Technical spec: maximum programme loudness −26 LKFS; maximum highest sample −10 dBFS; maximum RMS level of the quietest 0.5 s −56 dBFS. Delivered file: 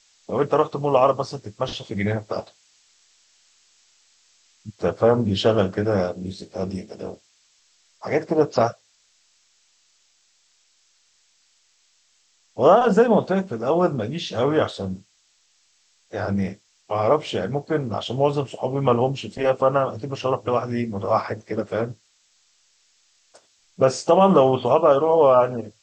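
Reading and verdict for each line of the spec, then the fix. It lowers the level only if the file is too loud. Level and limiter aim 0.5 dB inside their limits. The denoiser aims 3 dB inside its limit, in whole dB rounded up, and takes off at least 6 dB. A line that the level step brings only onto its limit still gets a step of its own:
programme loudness −21.5 LKFS: out of spec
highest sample −5.0 dBFS: out of spec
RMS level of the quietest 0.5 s −63 dBFS: in spec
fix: level −5 dB
brickwall limiter −10.5 dBFS

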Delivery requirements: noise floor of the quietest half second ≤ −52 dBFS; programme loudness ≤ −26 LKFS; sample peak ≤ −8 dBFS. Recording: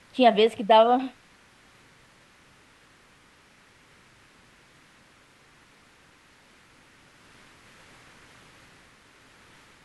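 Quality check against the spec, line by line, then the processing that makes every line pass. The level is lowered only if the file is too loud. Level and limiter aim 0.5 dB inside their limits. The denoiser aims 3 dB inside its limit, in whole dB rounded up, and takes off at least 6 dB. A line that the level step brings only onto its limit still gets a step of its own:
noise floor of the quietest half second −57 dBFS: in spec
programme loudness −20.5 LKFS: out of spec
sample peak −6.5 dBFS: out of spec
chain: level −6 dB

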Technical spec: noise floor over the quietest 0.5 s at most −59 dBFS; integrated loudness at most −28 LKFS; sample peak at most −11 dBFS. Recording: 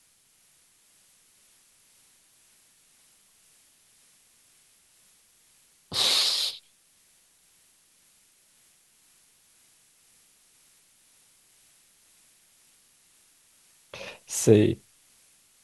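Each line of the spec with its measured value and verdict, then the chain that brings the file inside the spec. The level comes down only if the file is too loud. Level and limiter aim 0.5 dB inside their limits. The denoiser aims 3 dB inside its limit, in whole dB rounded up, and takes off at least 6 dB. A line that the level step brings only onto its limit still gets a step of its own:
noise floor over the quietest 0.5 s −63 dBFS: in spec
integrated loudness −24.0 LKFS: out of spec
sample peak −5.5 dBFS: out of spec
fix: level −4.5 dB
brickwall limiter −11.5 dBFS

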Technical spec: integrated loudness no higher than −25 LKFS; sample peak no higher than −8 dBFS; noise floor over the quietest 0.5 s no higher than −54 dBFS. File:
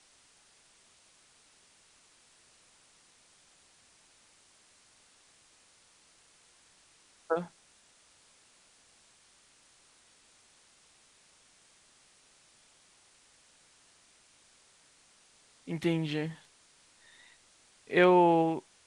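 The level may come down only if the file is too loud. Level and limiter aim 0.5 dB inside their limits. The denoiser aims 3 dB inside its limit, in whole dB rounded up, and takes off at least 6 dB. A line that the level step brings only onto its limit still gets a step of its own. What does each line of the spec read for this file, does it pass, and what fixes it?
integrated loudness −28.0 LKFS: in spec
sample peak −12.0 dBFS: in spec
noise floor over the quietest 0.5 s −64 dBFS: in spec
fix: no processing needed

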